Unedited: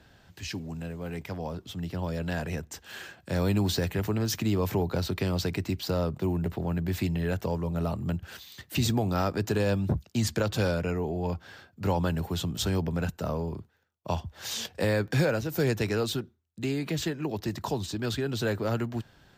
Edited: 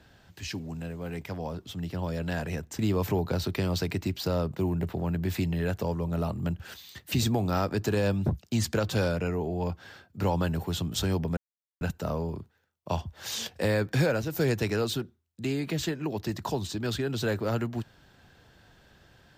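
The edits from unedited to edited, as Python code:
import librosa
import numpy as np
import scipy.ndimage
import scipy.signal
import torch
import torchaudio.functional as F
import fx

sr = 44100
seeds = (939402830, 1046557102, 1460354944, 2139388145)

y = fx.edit(x, sr, fx.cut(start_s=2.79, length_s=1.63),
    fx.insert_silence(at_s=13.0, length_s=0.44), tone=tone)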